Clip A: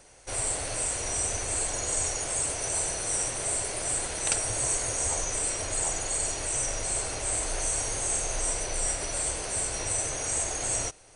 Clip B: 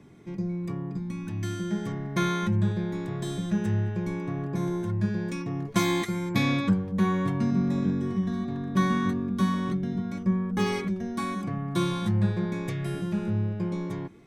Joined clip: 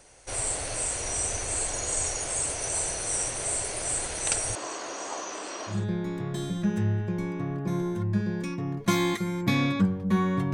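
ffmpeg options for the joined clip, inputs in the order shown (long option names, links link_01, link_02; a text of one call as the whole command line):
ffmpeg -i cue0.wav -i cue1.wav -filter_complex "[0:a]asettb=1/sr,asplit=3[link_01][link_02][link_03];[link_01]atrim=end=4.554[link_04];[link_02]atrim=start=4.55:end=5.86,asetpts=PTS-STARTPTS,afade=type=in:duration=0.004:curve=qsin,afade=type=out:start_time=1.306:duration=0.004:curve=qsin,highpass=frequency=230:width=0.5412,highpass=frequency=230:width=1.3066,equalizer=frequency=320:width_type=q:width=4:gain=4,equalizer=frequency=480:width_type=q:width=4:gain=-4,equalizer=frequency=1100:width_type=q:width=4:gain=7,equalizer=frequency=2200:width_type=q:width=4:gain=-6,equalizer=frequency=3900:width_type=q:width=4:gain=-3,lowpass=frequency=5200:width=0.5412,lowpass=frequency=5200:width=1.3066[link_05];[link_03]atrim=start=5.856[link_06];[link_04][link_05]acrossfade=duration=0.004:curve1=hsin:curve2=qsin[link_07];[link_07][link_06]acrossfade=duration=0.004:curve1=qsin:curve2=hsin,apad=whole_dur=10.53,atrim=end=10.53,atrim=end=5.86,asetpts=PTS-STARTPTS[link_08];[1:a]atrim=start=2.54:end=7.41,asetpts=PTS-STARTPTS[link_09];[link_08][link_09]acrossfade=duration=0.2:curve1=tri:curve2=tri" out.wav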